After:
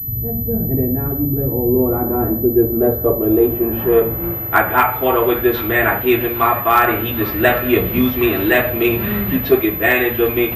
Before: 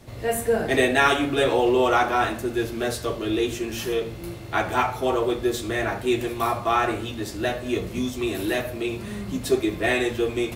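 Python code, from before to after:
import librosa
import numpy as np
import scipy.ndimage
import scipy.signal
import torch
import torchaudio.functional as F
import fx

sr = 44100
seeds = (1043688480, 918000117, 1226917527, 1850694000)

p1 = fx.dynamic_eq(x, sr, hz=1500.0, q=0.83, threshold_db=-32.0, ratio=4.0, max_db=4)
p2 = fx.filter_sweep_lowpass(p1, sr, from_hz=170.0, to_hz=2500.0, start_s=1.46, end_s=5.03, q=1.1)
p3 = np.clip(p2, -10.0 ** (-9.5 / 20.0), 10.0 ** (-9.5 / 20.0))
p4 = p3 + fx.echo_wet_highpass(p3, sr, ms=796, feedback_pct=53, hz=1600.0, wet_db=-16.5, dry=0)
p5 = fx.rider(p4, sr, range_db=4, speed_s=0.5)
p6 = fx.pwm(p5, sr, carrier_hz=12000.0)
y = p6 * 10.0 ** (8.5 / 20.0)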